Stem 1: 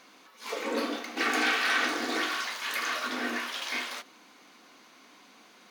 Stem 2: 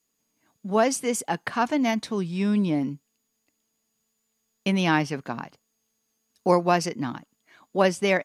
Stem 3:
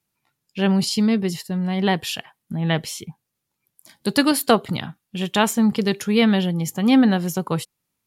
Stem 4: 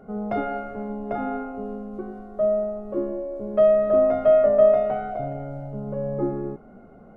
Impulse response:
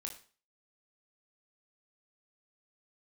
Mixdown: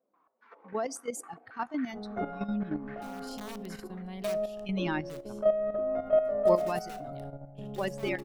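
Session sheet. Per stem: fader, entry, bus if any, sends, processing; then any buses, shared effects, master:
-14.5 dB, 0.00 s, send -20 dB, compression 6:1, threshold -32 dBFS, peak gain reduction 9.5 dB; flange 0.55 Hz, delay 4.2 ms, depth 9.7 ms, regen -23%; step-sequenced low-pass 7.3 Hz 560–1800 Hz
-5.0 dB, 0.00 s, send -20 dB, expander on every frequency bin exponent 2
-16.0 dB, 2.40 s, send -15 dB, treble shelf 12 kHz +3.5 dB; integer overflow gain 13 dB; auto duck -15 dB, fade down 0.45 s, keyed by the second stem
-7.5 dB, 1.85 s, send -11 dB, level-controlled noise filter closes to 570 Hz, open at -16 dBFS; de-hum 67.13 Hz, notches 19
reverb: on, RT60 0.40 s, pre-delay 18 ms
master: level held to a coarse grid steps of 10 dB

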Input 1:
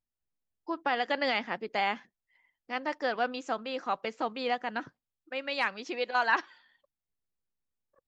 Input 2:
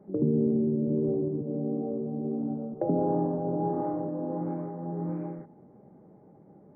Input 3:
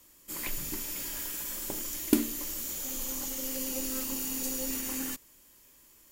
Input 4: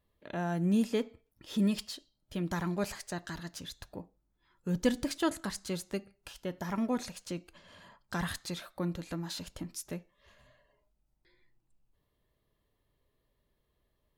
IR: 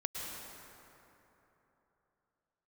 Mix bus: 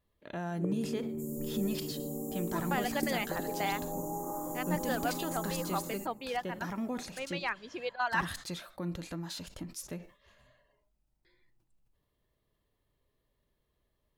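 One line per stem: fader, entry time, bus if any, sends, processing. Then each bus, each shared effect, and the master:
-4.0 dB, 1.85 s, no send, reverb removal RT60 1.5 s; treble shelf 8.2 kHz -10 dB
-4.0 dB, 0.50 s, no send, peaking EQ 1.1 kHz +13.5 dB 0.77 oct; compression, threshold -31 dBFS, peak gain reduction 10.5 dB
-10.0 dB, 0.90 s, no send, Chebyshev band-stop 500–7200 Hz, order 3
-1.5 dB, 0.00 s, no send, peak limiter -25.5 dBFS, peak gain reduction 11 dB; decay stretcher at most 150 dB/s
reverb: none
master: none

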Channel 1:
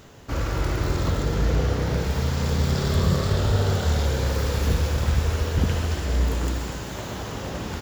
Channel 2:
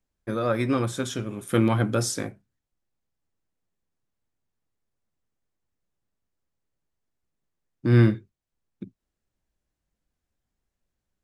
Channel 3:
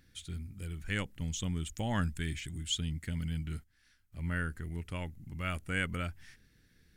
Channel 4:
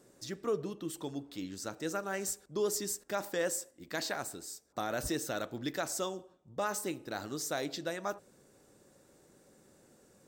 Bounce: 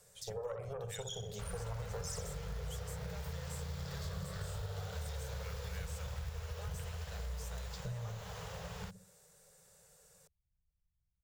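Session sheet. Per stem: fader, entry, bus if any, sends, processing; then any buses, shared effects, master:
-9.0 dB, 1.10 s, no send, no echo send, companded quantiser 6-bit
+0.5 dB, 0.00 s, no send, echo send -6 dB, resonances exaggerated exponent 3; Chebyshev shaper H 6 -20 dB, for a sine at -8.5 dBFS; compression, threshold -25 dBFS, peak gain reduction 11.5 dB
-10.0 dB, 0.00 s, no send, no echo send, none
-3.0 dB, 0.00 s, no send, no echo send, peaking EQ 13 kHz +9 dB 2.3 oct; compression 3:1, threshold -41 dBFS, peak gain reduction 12.5 dB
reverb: none
echo: feedback delay 63 ms, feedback 39%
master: elliptic band-stop 180–440 Hz, stop band 40 dB; compression 3:1, threshold -42 dBFS, peak gain reduction 13 dB

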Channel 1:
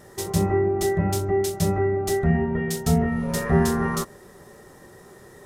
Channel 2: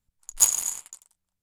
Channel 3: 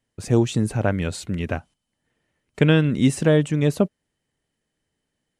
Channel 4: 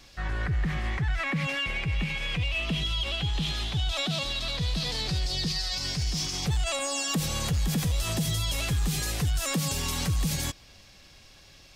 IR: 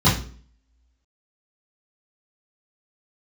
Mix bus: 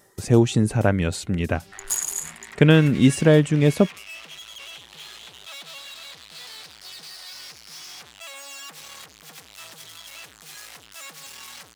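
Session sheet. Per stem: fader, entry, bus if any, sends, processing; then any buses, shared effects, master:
-8.0 dB, 0.00 s, no send, tilt EQ +2 dB/octave; reverb removal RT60 1.6 s; compression, threshold -30 dBFS, peak gain reduction 11.5 dB; auto duck -9 dB, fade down 0.40 s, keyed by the third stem
0.0 dB, 1.50 s, no send, peak limiter -11.5 dBFS, peak gain reduction 9.5 dB
+2.0 dB, 0.00 s, no send, none
-3.0 dB, 1.55 s, no send, hard clipper -36 dBFS, distortion -6 dB; high-pass 970 Hz 6 dB/octave; peaking EQ 1.6 kHz +5 dB 2.3 oct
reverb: none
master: none

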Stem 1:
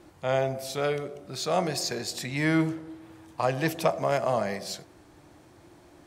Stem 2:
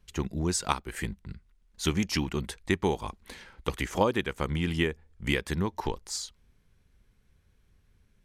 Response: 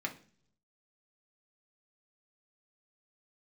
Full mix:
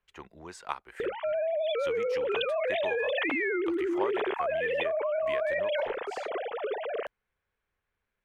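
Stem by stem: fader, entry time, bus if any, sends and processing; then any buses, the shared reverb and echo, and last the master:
-11.5 dB, 1.00 s, no send, formants replaced by sine waves; level flattener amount 100%
-5.0 dB, 0.00 s, no send, three-band isolator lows -19 dB, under 480 Hz, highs -16 dB, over 2.8 kHz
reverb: none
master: none

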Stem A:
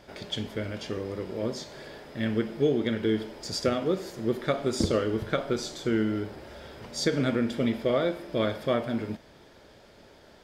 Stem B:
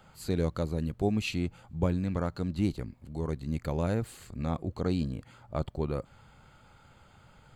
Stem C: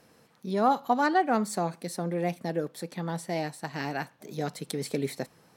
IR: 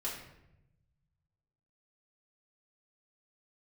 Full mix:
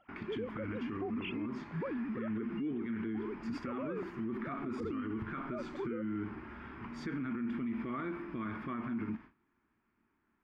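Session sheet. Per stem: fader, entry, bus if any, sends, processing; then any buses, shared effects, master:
-3.5 dB, 0.00 s, bus A, no send, gate with hold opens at -40 dBFS; FFT filter 160 Hz 0 dB, 230 Hz +8 dB, 350 Hz +3 dB, 540 Hz -19 dB, 1.1 kHz +9 dB, 1.6 kHz +3 dB, 2.5 kHz +2 dB, 3.7 kHz -18 dB, 7.8 kHz -25 dB
-6.5 dB, 0.00 s, no bus, no send, formants replaced by sine waves
mute
bus A: 0.0 dB, peak limiter -29 dBFS, peak gain reduction 16 dB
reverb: none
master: peak limiter -30.5 dBFS, peak gain reduction 10 dB

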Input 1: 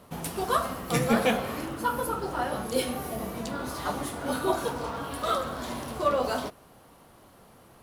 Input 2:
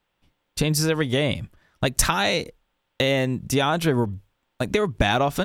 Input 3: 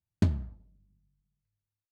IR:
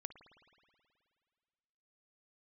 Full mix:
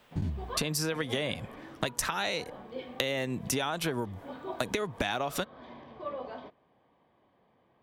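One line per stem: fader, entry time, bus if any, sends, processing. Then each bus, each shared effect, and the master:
-12.0 dB, 0.00 s, no send, low-pass 3.4 kHz 24 dB/octave; comb of notches 1.4 kHz
+1.5 dB, 0.00 s, no send, bass shelf 270 Hz -9 dB; three bands compressed up and down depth 40%
-16.5 dB, 0.00 s, no send, every event in the spectrogram widened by 120 ms; bass shelf 240 Hz +11.5 dB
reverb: none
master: compression 6:1, threshold -28 dBFS, peak gain reduction 12 dB

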